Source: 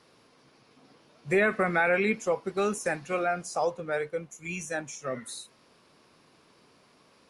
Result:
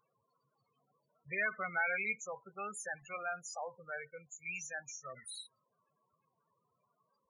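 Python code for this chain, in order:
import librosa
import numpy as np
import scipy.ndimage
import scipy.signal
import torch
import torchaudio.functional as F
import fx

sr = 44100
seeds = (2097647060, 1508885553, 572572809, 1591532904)

y = fx.spec_topn(x, sr, count=16)
y = fx.tone_stack(y, sr, knobs='10-0-10')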